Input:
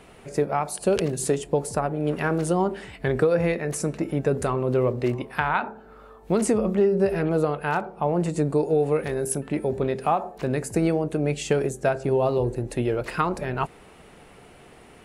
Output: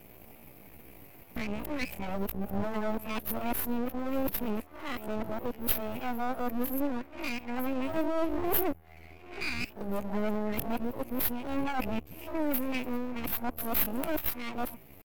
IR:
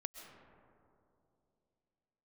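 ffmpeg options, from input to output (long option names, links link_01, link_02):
-filter_complex "[0:a]areverse,firequalizer=gain_entry='entry(100,0);entry(810,-19);entry(1500,-1);entry(2100,-26);entry(7800,11);entry(12000,-3)':delay=0.05:min_phase=1,asplit=2[link_01][link_02];[link_02]acompressor=threshold=-41dB:ratio=6,volume=-1dB[link_03];[link_01][link_03]amix=inputs=2:normalize=0,asetrate=72056,aresample=44100,atempo=0.612027,aeval=exprs='max(val(0),0)':channel_layout=same"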